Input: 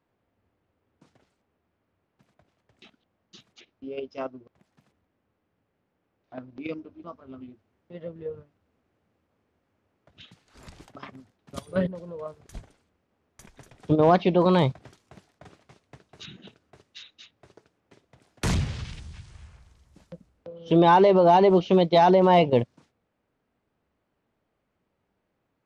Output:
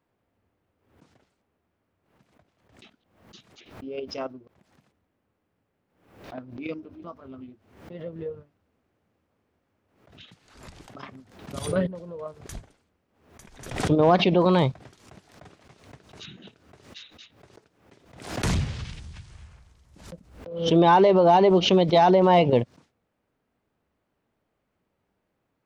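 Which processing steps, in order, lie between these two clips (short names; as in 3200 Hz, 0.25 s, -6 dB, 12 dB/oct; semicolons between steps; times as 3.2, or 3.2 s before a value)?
backwards sustainer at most 84 dB/s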